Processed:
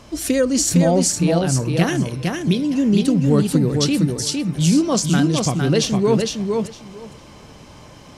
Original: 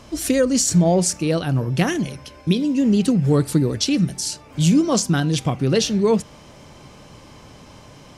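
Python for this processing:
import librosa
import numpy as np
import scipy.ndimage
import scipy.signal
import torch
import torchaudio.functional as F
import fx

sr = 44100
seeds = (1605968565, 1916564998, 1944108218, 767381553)

y = fx.echo_feedback(x, sr, ms=458, feedback_pct=16, wet_db=-4)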